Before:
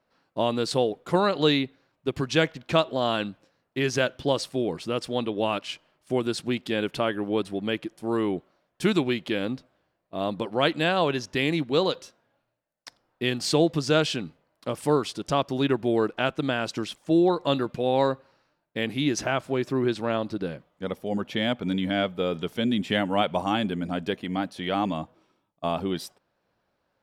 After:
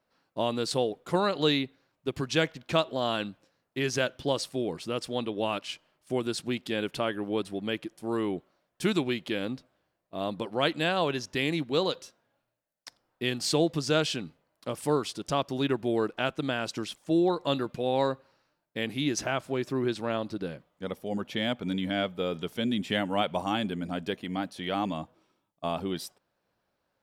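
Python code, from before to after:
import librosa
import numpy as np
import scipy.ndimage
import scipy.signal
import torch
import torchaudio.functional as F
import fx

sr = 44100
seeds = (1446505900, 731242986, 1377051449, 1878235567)

y = fx.high_shelf(x, sr, hz=4900.0, db=5.0)
y = y * 10.0 ** (-4.0 / 20.0)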